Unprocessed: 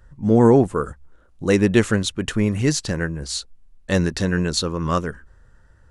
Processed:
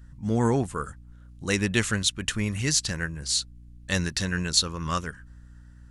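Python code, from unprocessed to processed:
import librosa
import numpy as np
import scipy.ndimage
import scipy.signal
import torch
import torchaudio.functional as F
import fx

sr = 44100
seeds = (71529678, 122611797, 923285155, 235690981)

y = fx.add_hum(x, sr, base_hz=60, snr_db=21)
y = fx.tone_stack(y, sr, knobs='5-5-5')
y = y * librosa.db_to_amplitude(8.5)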